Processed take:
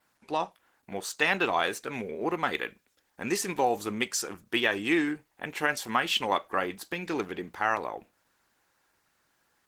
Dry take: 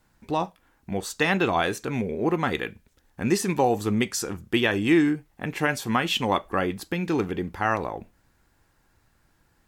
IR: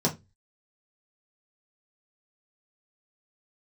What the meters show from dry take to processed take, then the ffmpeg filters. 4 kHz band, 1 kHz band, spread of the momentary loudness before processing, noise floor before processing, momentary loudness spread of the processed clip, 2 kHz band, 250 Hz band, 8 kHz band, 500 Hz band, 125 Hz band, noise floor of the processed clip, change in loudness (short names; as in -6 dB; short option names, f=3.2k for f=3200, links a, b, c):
-1.5 dB, -2.5 dB, 10 LU, -66 dBFS, 11 LU, -1.0 dB, -8.5 dB, -1.5 dB, -5.0 dB, -13.5 dB, -73 dBFS, -4.0 dB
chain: -af "highpass=f=650:p=1,adynamicequalizer=threshold=0.00316:dfrequency=6300:dqfactor=4.8:tfrequency=6300:tqfactor=4.8:attack=5:release=100:ratio=0.375:range=2:mode=cutabove:tftype=bell" -ar 48000 -c:a libopus -b:a 16k